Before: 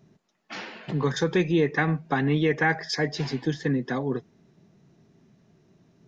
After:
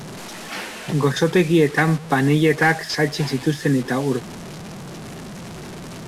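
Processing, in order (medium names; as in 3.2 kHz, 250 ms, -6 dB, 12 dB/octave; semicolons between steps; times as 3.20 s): one-bit delta coder 64 kbps, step -35 dBFS; trim +6.5 dB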